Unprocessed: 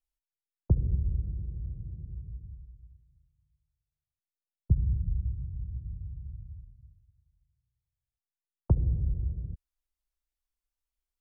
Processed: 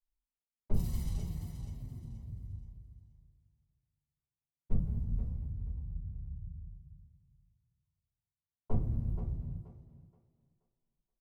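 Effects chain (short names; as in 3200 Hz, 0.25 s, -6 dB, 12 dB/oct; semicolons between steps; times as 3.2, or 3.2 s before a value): 0.74–2.23 G.711 law mismatch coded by A; low-pass opened by the level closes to 340 Hz, open at -23.5 dBFS; tilt +4 dB/oct; comb 1 ms, depth 60%; in parallel at -1.5 dB: compressor 6:1, threshold -53 dBFS, peak gain reduction 23.5 dB; on the sum: one-sided clip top -39 dBFS; flange 0.18 Hz, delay 3.1 ms, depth 7.3 ms, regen +57%; on a send: thinning echo 0.477 s, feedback 29%, high-pass 240 Hz, level -8.5 dB; on the sum: shoebox room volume 140 m³, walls furnished, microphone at 4.8 m; gain -3.5 dB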